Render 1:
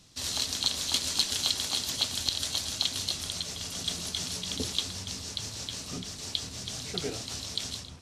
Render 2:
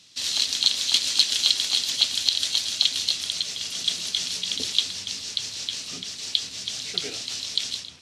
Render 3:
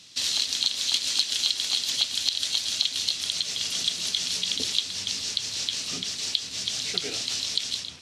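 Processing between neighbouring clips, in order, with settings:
weighting filter D; gain -3 dB
compressor 2.5:1, threshold -28 dBFS, peak gain reduction 10 dB; gain +3.5 dB

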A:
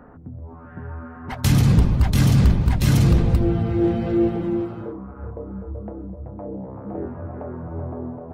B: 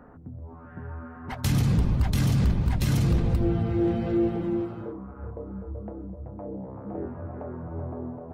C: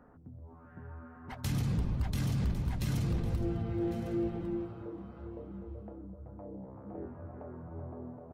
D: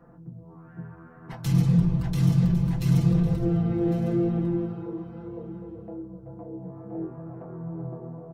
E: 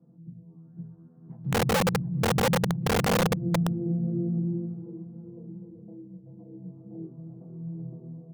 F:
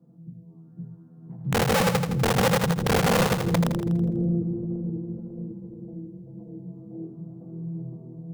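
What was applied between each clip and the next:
limiter -11.5 dBFS, peak gain reduction 4.5 dB; gain -4 dB
echo 1.103 s -15 dB; gain -9 dB
comb 5.9 ms, depth 81%; on a send at -3 dB: reverb RT60 0.20 s, pre-delay 3 ms
ladder band-pass 200 Hz, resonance 40%; wrapped overs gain 25 dB; gain +6 dB
split-band echo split 400 Hz, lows 0.546 s, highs 82 ms, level -6 dB; gain +2 dB

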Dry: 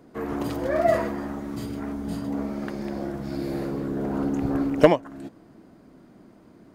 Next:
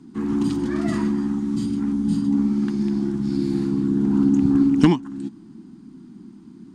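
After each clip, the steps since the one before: EQ curve 100 Hz 0 dB, 220 Hz +13 dB, 370 Hz +3 dB, 570 Hz -30 dB, 830 Hz -2 dB, 2100 Hz -4 dB, 3200 Hz +3 dB, 8900 Hz +5 dB, 13000 Hz -15 dB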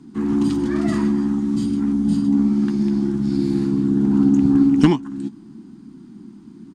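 in parallel at -12 dB: soft clip -17.5 dBFS, distortion -11 dB; on the sum: doubler 14 ms -13 dB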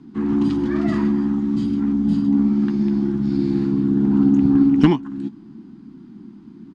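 LPF 4000 Hz 12 dB/oct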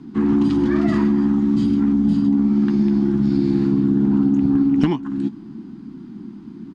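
compressor 10:1, threshold -18 dBFS, peak gain reduction 11 dB; gain +5 dB

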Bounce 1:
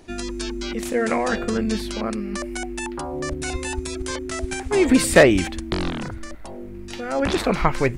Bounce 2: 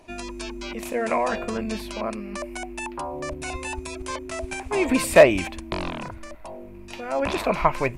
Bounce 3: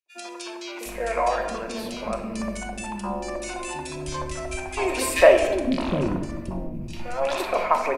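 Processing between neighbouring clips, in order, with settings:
thirty-one-band EQ 630 Hz +11 dB, 1000 Hz +11 dB, 2500 Hz +9 dB, 12500 Hz +8 dB; gain -6.5 dB
shoebox room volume 690 m³, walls mixed, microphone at 0.94 m; expander -32 dBFS; three bands offset in time highs, mids, lows 60/760 ms, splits 350/2100 Hz

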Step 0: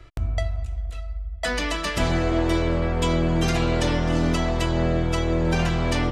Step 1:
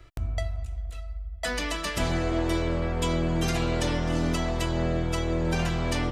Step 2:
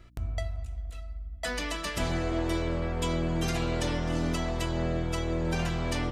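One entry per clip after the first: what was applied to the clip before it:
high shelf 9100 Hz +9 dB; gain -4.5 dB
hum 60 Hz, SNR 29 dB; gain -3 dB

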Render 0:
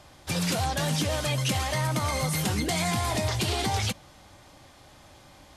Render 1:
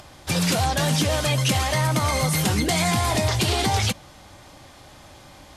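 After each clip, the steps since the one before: upward compressor, threshold -49 dBFS; gain +5.5 dB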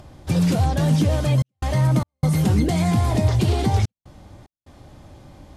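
tilt shelf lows +8 dB, about 650 Hz; step gate "xxxxxxx.xx.x" 74 bpm -60 dB; gain -1.5 dB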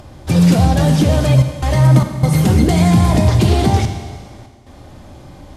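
notches 50/100/150/200 Hz; Schroeder reverb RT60 1.7 s, combs from 31 ms, DRR 6.5 dB; gain +6.5 dB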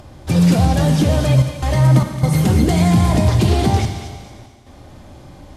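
thin delay 0.222 s, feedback 33%, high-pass 1600 Hz, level -10 dB; gain -2 dB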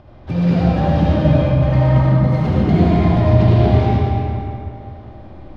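air absorption 290 m; digital reverb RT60 2.8 s, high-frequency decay 0.5×, pre-delay 35 ms, DRR -5.5 dB; gain -5 dB

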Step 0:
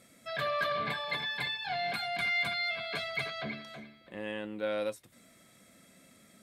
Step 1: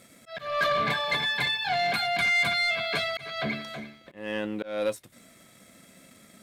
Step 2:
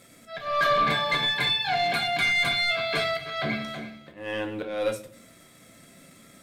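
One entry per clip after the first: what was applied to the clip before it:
sample leveller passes 1; auto swell 0.248 s; gain +4.5 dB
shoebox room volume 46 m³, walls mixed, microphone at 0.44 m

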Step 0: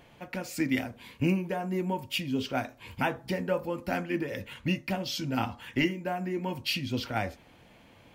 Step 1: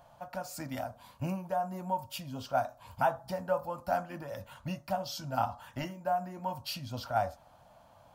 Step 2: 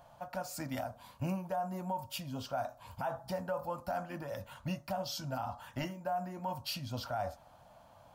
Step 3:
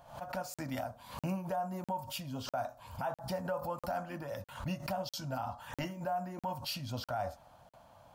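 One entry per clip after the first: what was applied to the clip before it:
EQ curve 140 Hz 0 dB, 420 Hz -14 dB, 620 Hz +10 dB, 1400 Hz +4 dB, 2100 Hz -13 dB, 4700 Hz 0 dB, 14000 Hz +3 dB; gain -4.5 dB
limiter -27 dBFS, peak gain reduction 11 dB
crackling interface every 0.65 s, samples 2048, zero, from 0.54; backwards sustainer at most 110 dB/s

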